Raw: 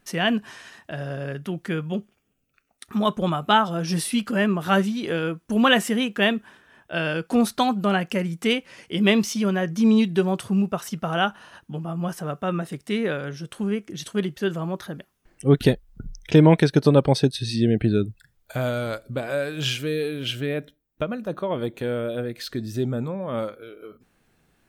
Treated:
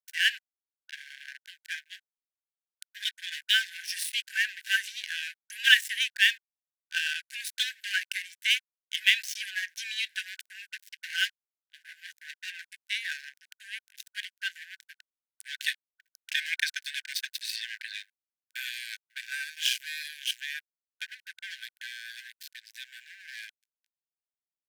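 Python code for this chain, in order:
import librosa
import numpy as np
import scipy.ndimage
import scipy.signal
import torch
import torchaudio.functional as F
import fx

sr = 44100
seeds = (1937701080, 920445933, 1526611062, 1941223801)

y = np.sign(x) * np.maximum(np.abs(x) - 10.0 ** (-29.5 / 20.0), 0.0)
y = fx.brickwall_highpass(y, sr, low_hz=1500.0)
y = y * 10.0 ** (3.5 / 20.0)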